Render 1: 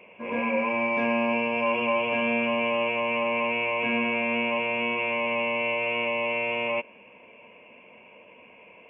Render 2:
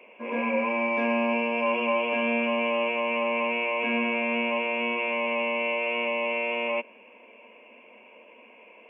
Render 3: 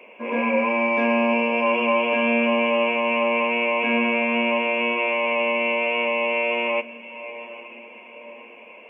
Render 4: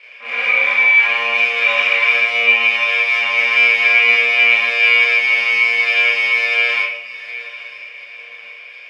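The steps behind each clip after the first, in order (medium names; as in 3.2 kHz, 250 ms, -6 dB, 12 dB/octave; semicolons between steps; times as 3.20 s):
elliptic high-pass 220 Hz
echo that smears into a reverb 909 ms, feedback 44%, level -16 dB; trim +5 dB
comb filter that takes the minimum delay 1.7 ms; band-pass filter 2.3 kHz, Q 2.6; reverberation RT60 0.75 s, pre-delay 19 ms, DRR -6 dB; trim +7 dB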